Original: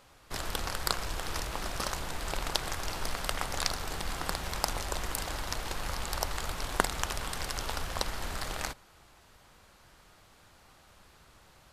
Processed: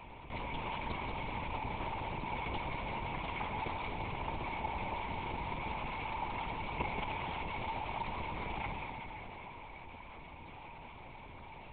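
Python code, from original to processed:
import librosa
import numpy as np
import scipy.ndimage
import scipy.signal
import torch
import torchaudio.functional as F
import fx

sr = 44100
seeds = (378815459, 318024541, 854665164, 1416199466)

p1 = np.minimum(x, 2.0 * 10.0 ** (-16.0 / 20.0) - x)
p2 = fx.vowel_filter(p1, sr, vowel='u')
p3 = fx.low_shelf(p2, sr, hz=200.0, db=-12.0)
p4 = p3 + fx.echo_single(p3, sr, ms=184, db=-8.0, dry=0)
p5 = fx.rev_plate(p4, sr, seeds[0], rt60_s=3.1, hf_ratio=0.9, predelay_ms=0, drr_db=6.0)
p6 = fx.lpc_vocoder(p5, sr, seeds[1], excitation='whisper', order=10)
p7 = fx.env_flatten(p6, sr, amount_pct=50)
y = p7 * 10.0 ** (7.0 / 20.0)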